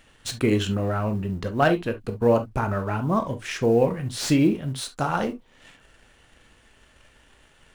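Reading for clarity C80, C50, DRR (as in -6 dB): 56.0 dB, 14.0 dB, 7.5 dB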